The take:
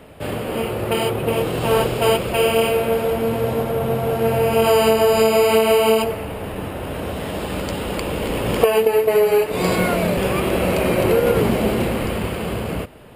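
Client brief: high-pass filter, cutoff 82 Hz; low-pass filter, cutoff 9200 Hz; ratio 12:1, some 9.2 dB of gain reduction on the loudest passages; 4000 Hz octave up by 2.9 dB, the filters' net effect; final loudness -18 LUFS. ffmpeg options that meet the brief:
-af "highpass=82,lowpass=9.2k,equalizer=f=4k:t=o:g=4.5,acompressor=threshold=-18dB:ratio=12,volume=5.5dB"

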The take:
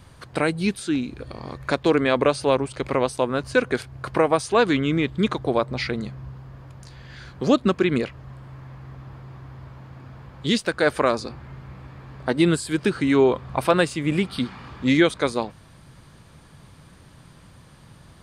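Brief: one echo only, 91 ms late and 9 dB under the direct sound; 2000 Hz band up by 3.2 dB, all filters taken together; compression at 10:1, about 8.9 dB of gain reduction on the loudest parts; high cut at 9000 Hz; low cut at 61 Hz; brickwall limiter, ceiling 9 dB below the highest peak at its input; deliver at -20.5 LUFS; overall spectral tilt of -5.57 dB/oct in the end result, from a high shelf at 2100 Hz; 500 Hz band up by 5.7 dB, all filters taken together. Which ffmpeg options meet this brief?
-af "highpass=61,lowpass=9k,equalizer=f=500:t=o:g=7,equalizer=f=2k:t=o:g=8.5,highshelf=f=2.1k:g=-8.5,acompressor=threshold=-17dB:ratio=10,alimiter=limit=-13.5dB:level=0:latency=1,aecho=1:1:91:0.355,volume=5.5dB"

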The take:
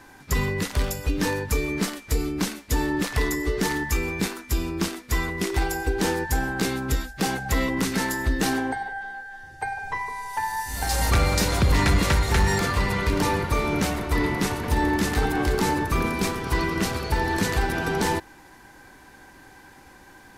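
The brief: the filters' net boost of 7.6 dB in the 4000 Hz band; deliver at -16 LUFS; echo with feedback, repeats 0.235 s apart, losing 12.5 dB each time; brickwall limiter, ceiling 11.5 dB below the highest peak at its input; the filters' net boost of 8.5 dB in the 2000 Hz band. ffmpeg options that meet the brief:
-af "equalizer=f=2k:t=o:g=8.5,equalizer=f=4k:t=o:g=7,alimiter=limit=-16dB:level=0:latency=1,aecho=1:1:235|470|705:0.237|0.0569|0.0137,volume=8.5dB"

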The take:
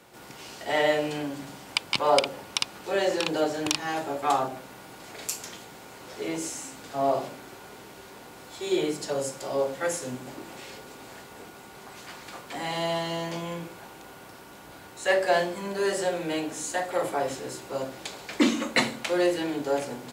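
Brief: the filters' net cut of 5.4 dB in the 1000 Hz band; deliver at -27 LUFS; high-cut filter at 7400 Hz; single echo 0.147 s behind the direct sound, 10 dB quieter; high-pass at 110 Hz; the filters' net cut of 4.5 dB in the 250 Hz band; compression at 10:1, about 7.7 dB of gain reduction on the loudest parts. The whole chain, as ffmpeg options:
-af "highpass=110,lowpass=7.4k,equalizer=f=250:t=o:g=-5.5,equalizer=f=1k:t=o:g=-7.5,acompressor=threshold=-28dB:ratio=10,aecho=1:1:147:0.316,volume=8dB"

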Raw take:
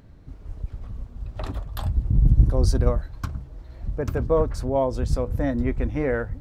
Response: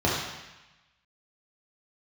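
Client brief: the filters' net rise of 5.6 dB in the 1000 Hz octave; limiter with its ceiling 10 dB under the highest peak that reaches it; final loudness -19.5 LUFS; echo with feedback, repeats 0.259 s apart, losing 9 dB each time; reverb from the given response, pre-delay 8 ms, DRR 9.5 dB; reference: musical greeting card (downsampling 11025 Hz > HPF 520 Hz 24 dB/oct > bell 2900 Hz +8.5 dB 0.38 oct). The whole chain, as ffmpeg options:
-filter_complex "[0:a]equalizer=f=1k:t=o:g=7,alimiter=limit=-14dB:level=0:latency=1,aecho=1:1:259|518|777|1036:0.355|0.124|0.0435|0.0152,asplit=2[a][b];[1:a]atrim=start_sample=2205,adelay=8[c];[b][c]afir=irnorm=-1:irlink=0,volume=-24.5dB[d];[a][d]amix=inputs=2:normalize=0,aresample=11025,aresample=44100,highpass=f=520:w=0.5412,highpass=f=520:w=1.3066,equalizer=f=2.9k:t=o:w=0.38:g=8.5,volume=11.5dB"

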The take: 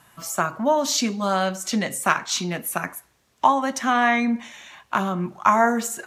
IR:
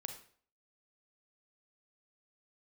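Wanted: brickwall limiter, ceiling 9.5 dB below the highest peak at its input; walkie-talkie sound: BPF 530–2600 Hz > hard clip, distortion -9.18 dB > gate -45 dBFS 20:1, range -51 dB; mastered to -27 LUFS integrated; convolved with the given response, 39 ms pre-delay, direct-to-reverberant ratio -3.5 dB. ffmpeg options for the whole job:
-filter_complex "[0:a]alimiter=limit=-12.5dB:level=0:latency=1,asplit=2[a][b];[1:a]atrim=start_sample=2205,adelay=39[c];[b][c]afir=irnorm=-1:irlink=0,volume=6dB[d];[a][d]amix=inputs=2:normalize=0,highpass=530,lowpass=2.6k,asoftclip=type=hard:threshold=-19dB,agate=range=-51dB:threshold=-45dB:ratio=20,volume=-1.5dB"

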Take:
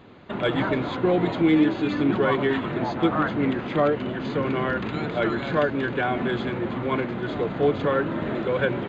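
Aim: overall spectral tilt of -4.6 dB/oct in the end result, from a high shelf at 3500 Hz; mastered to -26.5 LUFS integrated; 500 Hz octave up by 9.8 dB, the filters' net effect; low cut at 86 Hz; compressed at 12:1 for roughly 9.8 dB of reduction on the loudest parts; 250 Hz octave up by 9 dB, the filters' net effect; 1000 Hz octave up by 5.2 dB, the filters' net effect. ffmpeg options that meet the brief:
-af "highpass=86,equalizer=f=250:t=o:g=8,equalizer=f=500:t=o:g=9,equalizer=f=1k:t=o:g=4,highshelf=f=3.5k:g=-8,acompressor=threshold=-16dB:ratio=12,volume=-5dB"

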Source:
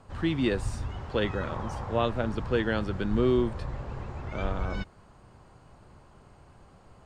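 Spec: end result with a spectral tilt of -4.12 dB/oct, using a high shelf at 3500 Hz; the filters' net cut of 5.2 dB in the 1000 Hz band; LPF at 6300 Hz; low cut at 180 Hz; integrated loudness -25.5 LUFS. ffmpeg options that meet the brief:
-af "highpass=180,lowpass=6.3k,equalizer=f=1k:t=o:g=-8,highshelf=f=3.5k:g=8.5,volume=6dB"

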